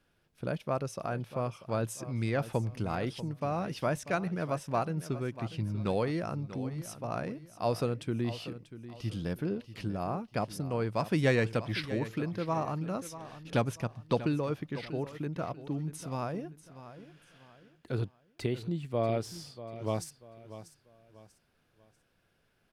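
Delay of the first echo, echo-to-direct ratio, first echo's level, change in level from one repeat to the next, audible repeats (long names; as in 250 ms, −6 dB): 640 ms, −13.5 dB, −14.0 dB, −9.5 dB, 3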